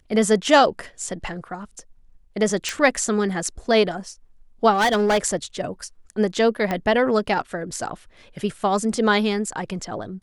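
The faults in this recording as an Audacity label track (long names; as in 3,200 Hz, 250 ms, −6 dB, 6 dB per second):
2.690000	2.690000	click
4.730000	5.260000	clipping −15 dBFS
6.710000	6.710000	click −11 dBFS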